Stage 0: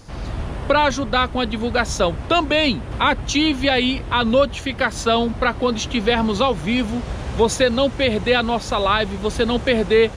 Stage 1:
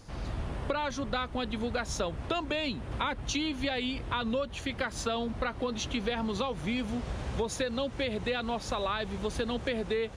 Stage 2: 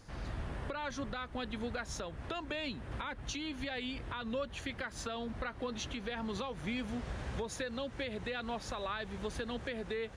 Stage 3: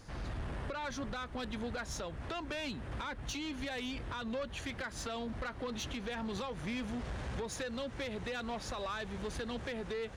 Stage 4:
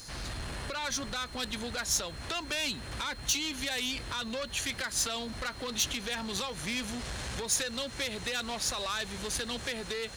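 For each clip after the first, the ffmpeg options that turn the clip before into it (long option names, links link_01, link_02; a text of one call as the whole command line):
ffmpeg -i in.wav -af "acompressor=threshold=-20dB:ratio=6,volume=-8dB" out.wav
ffmpeg -i in.wav -af "equalizer=frequency=1700:width_type=o:width=0.65:gain=5,alimiter=limit=-22.5dB:level=0:latency=1:release=294,volume=-5dB" out.wav
ffmpeg -i in.wav -af "asoftclip=type=tanh:threshold=-35.5dB,volume=2.5dB" out.wav
ffmpeg -i in.wav -af "aeval=exprs='val(0)+0.000794*sin(2*PI*4200*n/s)':channel_layout=same,crystalizer=i=6.5:c=0" out.wav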